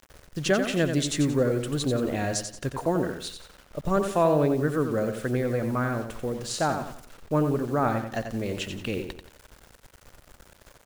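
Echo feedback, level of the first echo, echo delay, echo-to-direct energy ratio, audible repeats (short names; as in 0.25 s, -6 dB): 36%, -7.5 dB, 89 ms, -7.0 dB, 4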